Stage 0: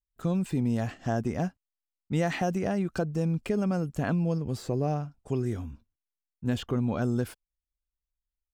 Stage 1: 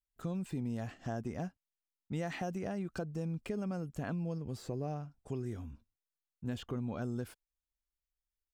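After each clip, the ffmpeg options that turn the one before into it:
ffmpeg -i in.wav -af "acompressor=threshold=-37dB:ratio=1.5,volume=-5dB" out.wav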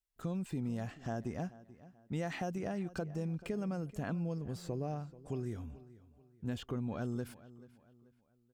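ffmpeg -i in.wav -filter_complex "[0:a]asplit=2[link_01][link_02];[link_02]adelay=435,lowpass=frequency=4800:poles=1,volume=-18dB,asplit=2[link_03][link_04];[link_04]adelay=435,lowpass=frequency=4800:poles=1,volume=0.37,asplit=2[link_05][link_06];[link_06]adelay=435,lowpass=frequency=4800:poles=1,volume=0.37[link_07];[link_01][link_03][link_05][link_07]amix=inputs=4:normalize=0" out.wav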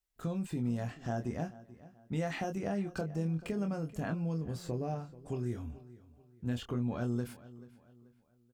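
ffmpeg -i in.wav -filter_complex "[0:a]asplit=2[link_01][link_02];[link_02]adelay=25,volume=-6.5dB[link_03];[link_01][link_03]amix=inputs=2:normalize=0,volume=1.5dB" out.wav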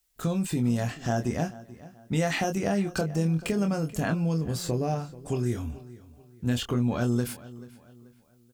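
ffmpeg -i in.wav -af "highshelf=frequency=3000:gain=9,volume=8dB" out.wav

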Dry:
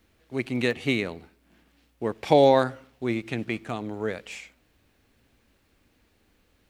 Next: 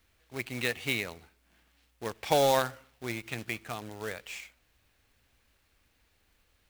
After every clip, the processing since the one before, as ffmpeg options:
ffmpeg -i in.wav -af "equalizer=frequency=260:width=0.57:gain=-10.5,acrusher=bits=2:mode=log:mix=0:aa=0.000001,volume=-2dB" out.wav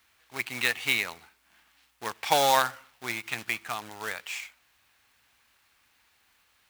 ffmpeg -i in.wav -af "highpass=frequency=170:poles=1,lowshelf=frequency=690:width_type=q:width=1.5:gain=-7,volume=5.5dB" out.wav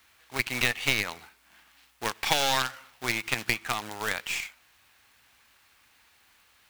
ffmpeg -i in.wav -filter_complex "[0:a]aeval=exprs='0.447*(cos(1*acos(clip(val(0)/0.447,-1,1)))-cos(1*PI/2))+0.0501*(cos(3*acos(clip(val(0)/0.447,-1,1)))-cos(3*PI/2))+0.0447*(cos(6*acos(clip(val(0)/0.447,-1,1)))-cos(6*PI/2))':channel_layout=same,acrossover=split=1600|7000[link_01][link_02][link_03];[link_01]acompressor=threshold=-36dB:ratio=4[link_04];[link_02]acompressor=threshold=-32dB:ratio=4[link_05];[link_03]acompressor=threshold=-45dB:ratio=4[link_06];[link_04][link_05][link_06]amix=inputs=3:normalize=0,volume=8dB" out.wav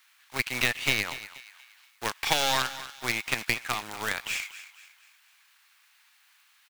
ffmpeg -i in.wav -filter_complex "[0:a]aecho=1:1:239|478|717|956:0.2|0.0798|0.0319|0.0128,acrossover=split=900[link_01][link_02];[link_01]aeval=exprs='sgn(val(0))*max(abs(val(0))-0.00447,0)':channel_layout=same[link_03];[link_03][link_02]amix=inputs=2:normalize=0" out.wav

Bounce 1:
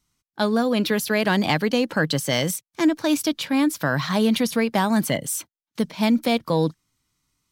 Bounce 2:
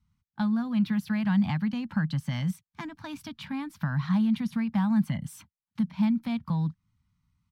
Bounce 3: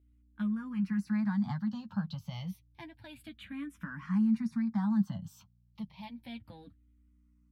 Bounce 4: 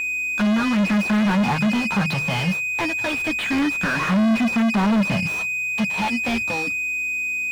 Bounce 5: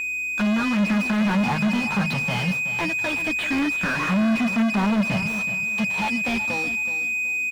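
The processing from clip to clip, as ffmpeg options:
ffmpeg -i in.wav -af "equalizer=frequency=80:width=0.7:gain=12.5,acompressor=threshold=-25dB:ratio=2,firequalizer=gain_entry='entry(130,0);entry(200,6);entry(390,-27);entry(840,-2);entry(6800,-16)':delay=0.05:min_phase=1,volume=-3.5dB" out.wav
ffmpeg -i in.wav -filter_complex "[0:a]flanger=delay=8.2:depth=2.8:regen=21:speed=0.66:shape=triangular,aeval=exprs='val(0)+0.001*(sin(2*PI*60*n/s)+sin(2*PI*2*60*n/s)/2+sin(2*PI*3*60*n/s)/3+sin(2*PI*4*60*n/s)/4+sin(2*PI*5*60*n/s)/5)':channel_layout=same,asplit=2[link_01][link_02];[link_02]afreqshift=-0.3[link_03];[link_01][link_03]amix=inputs=2:normalize=1,volume=-2dB" out.wav
ffmpeg -i in.wav -filter_complex "[0:a]aeval=exprs='val(0)+0.00355*sin(2*PI*2500*n/s)':channel_layout=same,asplit=2[link_01][link_02];[link_02]highpass=frequency=720:poles=1,volume=43dB,asoftclip=type=tanh:threshold=-18.5dB[link_03];[link_01][link_03]amix=inputs=2:normalize=0,lowpass=frequency=1300:poles=1,volume=-6dB,bandreject=frequency=50:width_type=h:width=6,bandreject=frequency=100:width_type=h:width=6,bandreject=frequency=150:width_type=h:width=6,volume=7dB" out.wav
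ffmpeg -i in.wav -af "aecho=1:1:374|748|1122:0.251|0.0703|0.0197,volume=-2.5dB" out.wav

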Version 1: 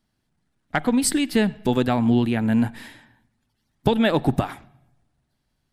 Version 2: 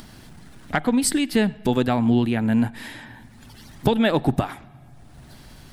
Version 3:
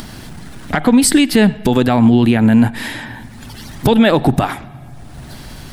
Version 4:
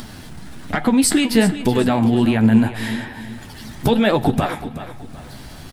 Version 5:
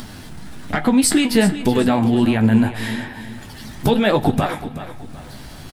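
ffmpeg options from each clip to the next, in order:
ffmpeg -i in.wav -af "acompressor=mode=upward:threshold=-21dB:ratio=2.5" out.wav
ffmpeg -i in.wav -af "alimiter=level_in=13.5dB:limit=-1dB:release=50:level=0:latency=1,volume=-1.5dB" out.wav
ffmpeg -i in.wav -af "flanger=delay=7.9:depth=8.1:regen=45:speed=1.2:shape=triangular,aecho=1:1:376|752|1128|1504:0.224|0.0806|0.029|0.0104" out.wav
ffmpeg -i in.wav -filter_complex "[0:a]asplit=2[link_01][link_02];[link_02]adelay=20,volume=-12dB[link_03];[link_01][link_03]amix=inputs=2:normalize=0" out.wav

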